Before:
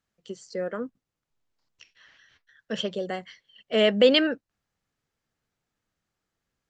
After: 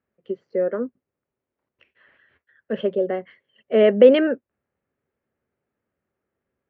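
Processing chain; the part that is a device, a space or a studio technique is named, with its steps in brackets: bass cabinet (cabinet simulation 64–2400 Hz, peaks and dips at 76 Hz +5 dB, 240 Hz +6 dB, 390 Hz +10 dB, 560 Hz +8 dB)

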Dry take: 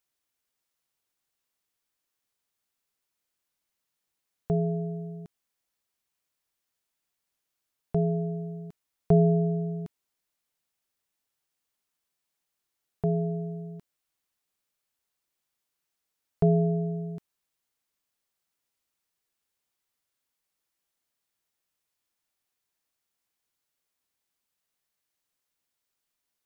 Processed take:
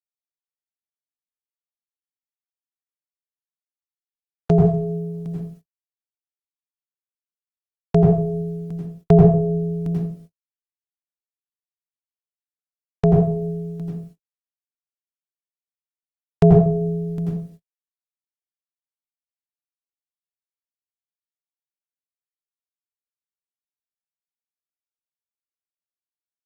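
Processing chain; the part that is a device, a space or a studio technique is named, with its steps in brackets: speakerphone in a meeting room (reverberation RT60 0.45 s, pre-delay 83 ms, DRR -4 dB; level rider gain up to 10.5 dB; gate -41 dBFS, range -52 dB; Opus 20 kbps 48 kHz)

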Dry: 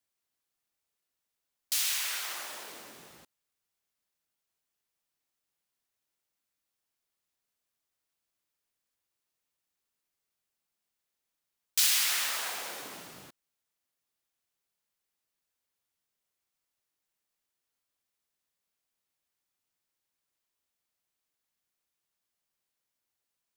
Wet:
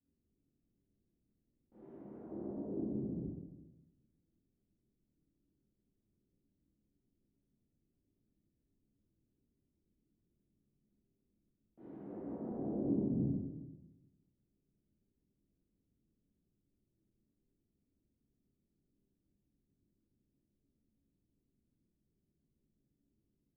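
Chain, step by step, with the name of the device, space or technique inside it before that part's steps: next room (low-pass 310 Hz 24 dB/octave; reverberation RT60 1.0 s, pre-delay 14 ms, DRR -8.5 dB); trim +12.5 dB

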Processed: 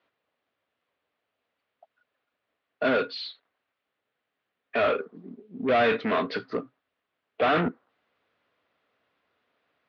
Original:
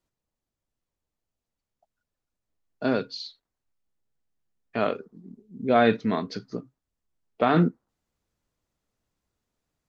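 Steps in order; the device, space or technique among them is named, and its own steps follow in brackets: overdrive pedal into a guitar cabinet (overdrive pedal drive 30 dB, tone 2.9 kHz, clips at -6 dBFS; cabinet simulation 110–3500 Hz, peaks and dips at 140 Hz -7 dB, 200 Hz -7 dB, 340 Hz -5 dB, 890 Hz -6 dB); trim -7 dB

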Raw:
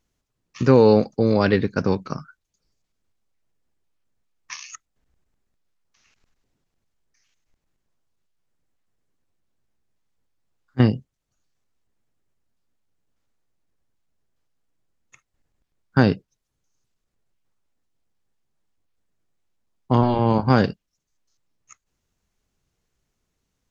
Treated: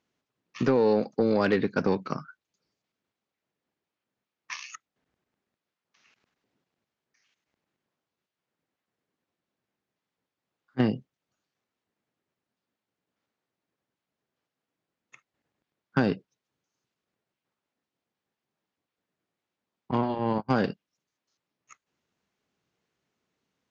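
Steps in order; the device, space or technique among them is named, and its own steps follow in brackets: AM radio (band-pass 180–3400 Hz; compression 8:1, threshold -17 dBFS, peak gain reduction 7.5 dB; saturation -12.5 dBFS, distortion -19 dB); 19.91–20.53 s: gate -22 dBFS, range -32 dB; treble shelf 6.1 kHz +9 dB

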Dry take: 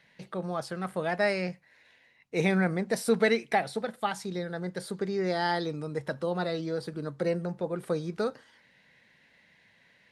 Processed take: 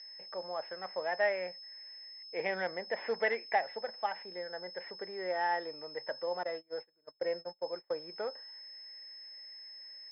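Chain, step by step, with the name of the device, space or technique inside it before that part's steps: toy sound module (decimation joined by straight lines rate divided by 4×; class-D stage that switches slowly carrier 5.2 kHz; cabinet simulation 550–4600 Hz, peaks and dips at 560 Hz +7 dB, 890 Hz +5 dB, 1.3 kHz -6 dB, 1.9 kHz +8 dB, 4 kHz -8 dB); 6.43–7.96 s: gate -34 dBFS, range -29 dB; trim -5.5 dB

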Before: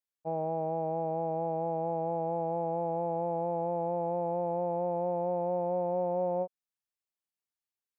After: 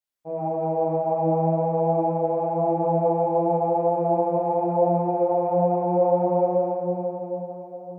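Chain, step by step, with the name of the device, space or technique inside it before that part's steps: cathedral (reverberation RT60 4.7 s, pre-delay 4 ms, DRR -10 dB); trim -1.5 dB

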